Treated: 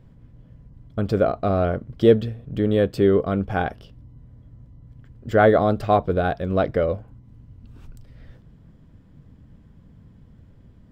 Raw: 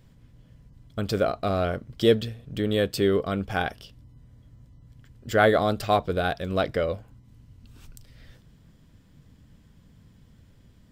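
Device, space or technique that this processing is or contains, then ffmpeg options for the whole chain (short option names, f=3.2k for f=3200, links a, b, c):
through cloth: -af "highshelf=f=2.3k:g=-17,volume=5.5dB"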